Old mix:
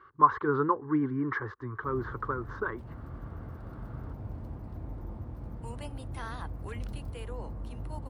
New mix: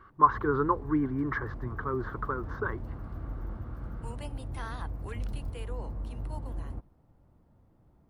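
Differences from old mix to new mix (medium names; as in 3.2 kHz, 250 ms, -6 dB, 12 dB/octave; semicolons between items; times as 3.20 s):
background: entry -1.60 s; master: remove high-pass 52 Hz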